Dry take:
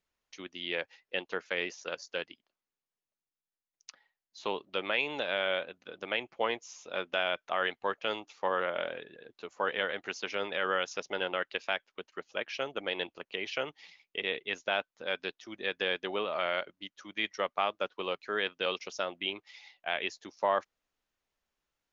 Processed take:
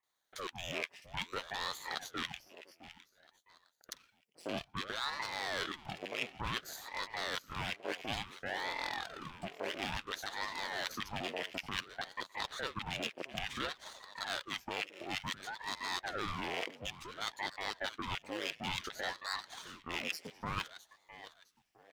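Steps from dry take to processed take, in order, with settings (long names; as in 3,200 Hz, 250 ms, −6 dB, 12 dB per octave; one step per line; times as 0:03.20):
lower of the sound and its delayed copy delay 0.38 ms
multiband delay without the direct sound lows, highs 30 ms, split 1,400 Hz
reversed playback
downward compressor 6 to 1, threshold −41 dBFS, peak gain reduction 14.5 dB
reversed playback
high-pass filter 260 Hz 24 dB per octave
on a send: repeating echo 660 ms, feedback 29%, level −14.5 dB
on the sum: ring modulator whose carrier an LFO sweeps 780 Hz, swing 90%, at 0.57 Hz
level +8.5 dB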